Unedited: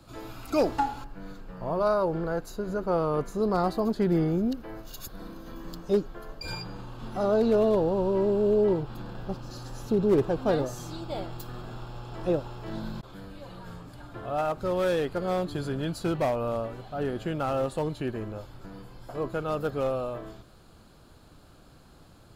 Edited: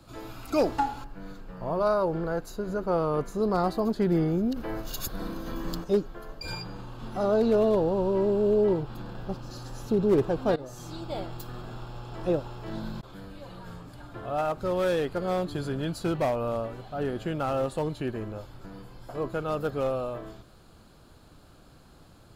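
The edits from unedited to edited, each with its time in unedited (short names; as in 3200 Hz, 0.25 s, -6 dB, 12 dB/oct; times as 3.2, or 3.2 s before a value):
4.56–5.84 gain +7 dB
10.56–11.1 fade in equal-power, from -19 dB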